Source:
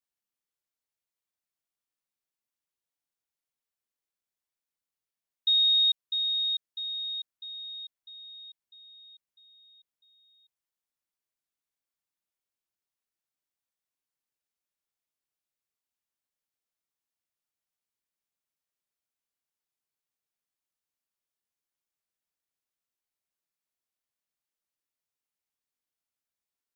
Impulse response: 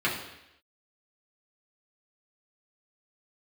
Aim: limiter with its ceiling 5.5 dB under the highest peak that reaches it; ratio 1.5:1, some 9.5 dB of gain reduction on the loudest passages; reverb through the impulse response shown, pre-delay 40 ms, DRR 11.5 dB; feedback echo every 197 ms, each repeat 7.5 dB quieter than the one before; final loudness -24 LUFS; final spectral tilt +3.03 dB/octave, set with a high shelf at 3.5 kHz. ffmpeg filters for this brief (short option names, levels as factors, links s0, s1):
-filter_complex "[0:a]highshelf=f=3500:g=8.5,acompressor=threshold=0.00631:ratio=1.5,alimiter=level_in=1.41:limit=0.0631:level=0:latency=1,volume=0.708,aecho=1:1:197|394|591|788|985:0.422|0.177|0.0744|0.0312|0.0131,asplit=2[s0][s1];[1:a]atrim=start_sample=2205,adelay=40[s2];[s1][s2]afir=irnorm=-1:irlink=0,volume=0.0631[s3];[s0][s3]amix=inputs=2:normalize=0,volume=2.99"